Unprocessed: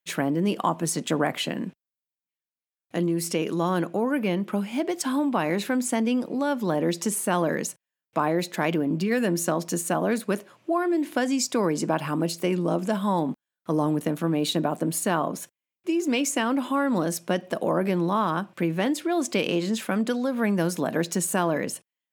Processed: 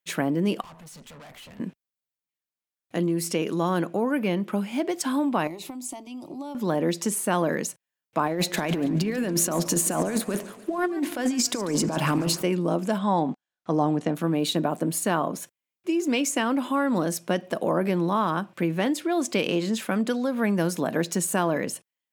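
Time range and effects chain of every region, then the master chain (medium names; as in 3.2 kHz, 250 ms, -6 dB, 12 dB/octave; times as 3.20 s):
0.61–1.60 s: peaking EQ 320 Hz -14 dB 0.61 oct + compression 1.5:1, threshold -37 dBFS + valve stage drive 44 dB, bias 0.6
5.47–6.55 s: compression 5:1, threshold -29 dBFS + static phaser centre 320 Hz, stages 8
8.26–12.42 s: compressor with a negative ratio -27 dBFS, ratio -0.5 + waveshaping leveller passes 1 + modulated delay 143 ms, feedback 53%, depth 158 cents, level -16 dB
12.98–14.15 s: low-pass 7.3 kHz 24 dB/octave + peaking EQ 750 Hz +8 dB 0.22 oct
whole clip: none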